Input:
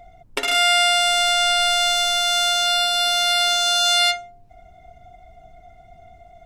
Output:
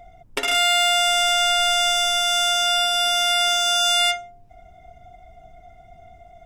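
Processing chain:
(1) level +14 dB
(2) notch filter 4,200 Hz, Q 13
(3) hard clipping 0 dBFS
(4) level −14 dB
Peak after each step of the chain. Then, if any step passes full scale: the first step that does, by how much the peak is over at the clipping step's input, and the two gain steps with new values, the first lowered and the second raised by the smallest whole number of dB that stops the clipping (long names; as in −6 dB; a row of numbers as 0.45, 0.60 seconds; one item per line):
+5.5, +5.5, 0.0, −14.0 dBFS
step 1, 5.5 dB
step 1 +8 dB, step 4 −8 dB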